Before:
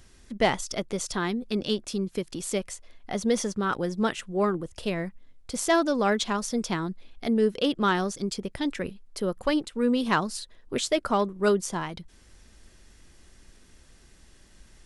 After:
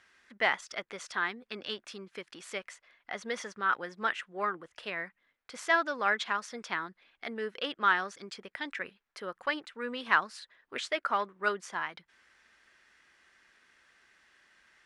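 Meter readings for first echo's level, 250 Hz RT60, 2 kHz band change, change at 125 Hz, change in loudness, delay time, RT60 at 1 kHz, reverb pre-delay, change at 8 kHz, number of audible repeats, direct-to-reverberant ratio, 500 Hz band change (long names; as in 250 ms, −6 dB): no echo audible, no reverb audible, +2.5 dB, −20.5 dB, −5.5 dB, no echo audible, no reverb audible, no reverb audible, −14.0 dB, no echo audible, no reverb audible, −11.0 dB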